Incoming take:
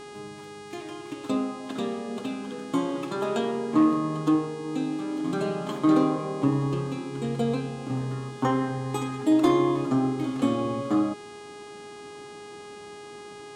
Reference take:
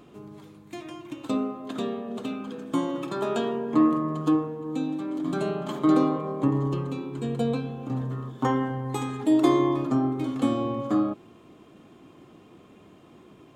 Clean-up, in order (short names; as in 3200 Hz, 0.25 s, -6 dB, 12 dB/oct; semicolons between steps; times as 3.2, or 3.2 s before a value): clip repair -12.5 dBFS; de-hum 413 Hz, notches 25